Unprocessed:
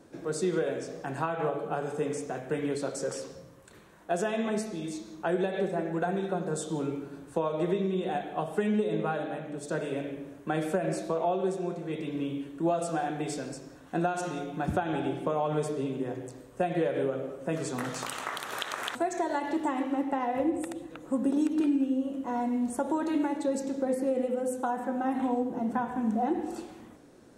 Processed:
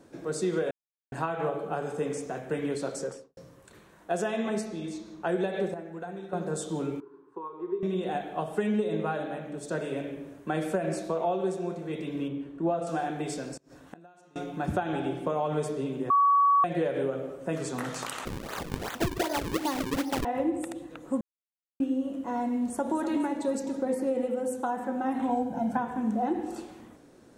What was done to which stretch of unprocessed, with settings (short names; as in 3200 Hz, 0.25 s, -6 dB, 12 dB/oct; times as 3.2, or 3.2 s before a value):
0.71–1.12 mute
2.95–3.37 studio fade out
4.6–5.23 high shelf 11000 Hz -> 6400 Hz -10.5 dB
5.74–6.33 gain -9 dB
7–7.83 double band-pass 630 Hz, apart 1.4 oct
12.28–12.87 LPF 1600 Hz 6 dB/oct
13.57–14.36 flipped gate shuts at -34 dBFS, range -25 dB
16.1–16.64 bleep 1130 Hz -18 dBFS
18.25–20.25 decimation with a swept rate 38×, swing 160% 2.6 Hz
21.21–21.8 mute
22.6–23.03 echo throw 0.25 s, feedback 60%, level -9.5 dB
25.29–25.77 comb 1.3 ms, depth 92%